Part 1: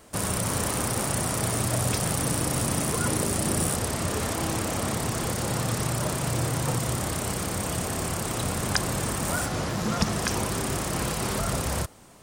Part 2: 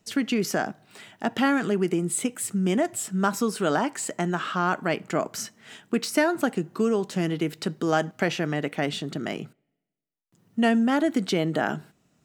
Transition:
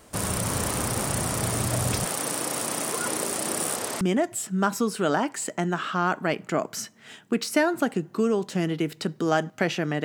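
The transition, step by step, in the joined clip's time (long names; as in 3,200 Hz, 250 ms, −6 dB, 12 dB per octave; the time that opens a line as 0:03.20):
part 1
0:02.05–0:04.01: high-pass filter 330 Hz 12 dB per octave
0:04.01: continue with part 2 from 0:02.62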